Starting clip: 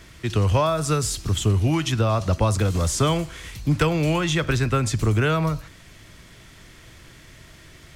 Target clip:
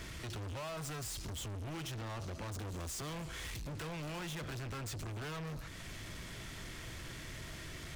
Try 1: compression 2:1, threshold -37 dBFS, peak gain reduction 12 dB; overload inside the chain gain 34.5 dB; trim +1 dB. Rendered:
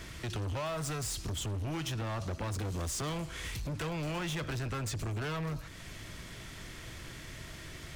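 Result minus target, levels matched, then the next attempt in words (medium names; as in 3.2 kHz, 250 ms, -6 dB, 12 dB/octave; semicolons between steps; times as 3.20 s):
overload inside the chain: distortion -4 dB
compression 2:1, threshold -37 dBFS, peak gain reduction 12 dB; overload inside the chain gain 42 dB; trim +1 dB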